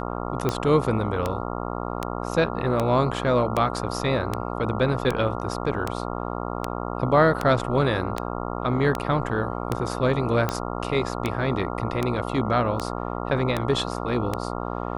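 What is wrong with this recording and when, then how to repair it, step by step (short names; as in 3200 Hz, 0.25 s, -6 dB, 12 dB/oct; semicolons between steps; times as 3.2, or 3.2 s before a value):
buzz 60 Hz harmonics 23 -30 dBFS
tick 78 rpm -10 dBFS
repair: de-click; de-hum 60 Hz, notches 23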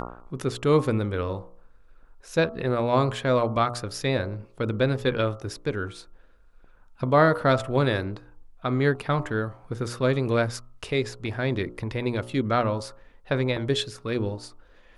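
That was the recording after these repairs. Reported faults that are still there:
none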